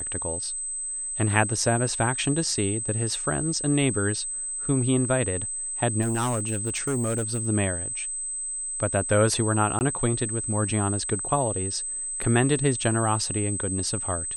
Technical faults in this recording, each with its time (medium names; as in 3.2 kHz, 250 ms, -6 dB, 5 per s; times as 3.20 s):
whine 8.2 kHz -29 dBFS
6.01–7.47 s: clipped -22 dBFS
9.79–9.81 s: dropout 19 ms